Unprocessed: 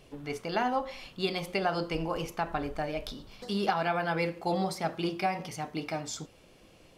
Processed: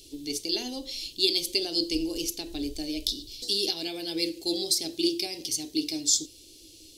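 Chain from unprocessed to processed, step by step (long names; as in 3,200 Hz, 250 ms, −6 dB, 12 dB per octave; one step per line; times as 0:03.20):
drawn EQ curve 100 Hz 0 dB, 190 Hz −19 dB, 310 Hz +8 dB, 550 Hz −12 dB, 1,300 Hz −29 dB, 4,000 Hz +15 dB
level +1.5 dB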